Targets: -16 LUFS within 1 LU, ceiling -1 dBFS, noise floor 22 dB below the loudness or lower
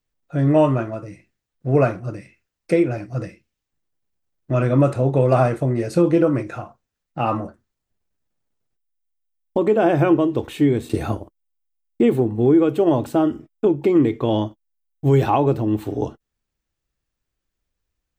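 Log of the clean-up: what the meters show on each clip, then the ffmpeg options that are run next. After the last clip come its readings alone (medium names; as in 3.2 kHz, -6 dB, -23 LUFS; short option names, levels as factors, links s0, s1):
loudness -19.5 LUFS; peak level -6.0 dBFS; loudness target -16.0 LUFS
-> -af "volume=1.5"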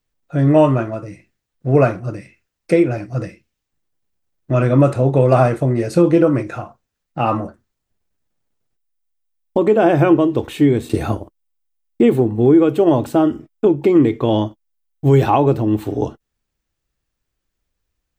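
loudness -16.0 LUFS; peak level -2.0 dBFS; noise floor -78 dBFS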